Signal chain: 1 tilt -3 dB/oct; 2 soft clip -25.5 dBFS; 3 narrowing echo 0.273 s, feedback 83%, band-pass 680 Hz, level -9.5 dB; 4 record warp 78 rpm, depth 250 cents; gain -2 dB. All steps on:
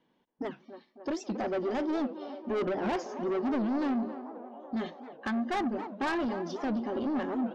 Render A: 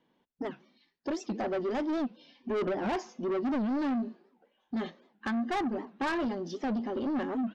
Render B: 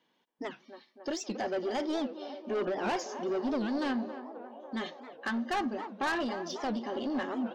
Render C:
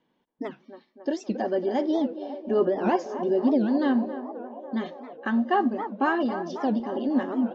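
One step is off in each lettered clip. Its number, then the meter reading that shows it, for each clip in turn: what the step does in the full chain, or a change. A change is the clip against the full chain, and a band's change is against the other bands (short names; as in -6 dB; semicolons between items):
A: 3, crest factor change -4.5 dB; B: 1, 4 kHz band +6.0 dB; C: 2, distortion -8 dB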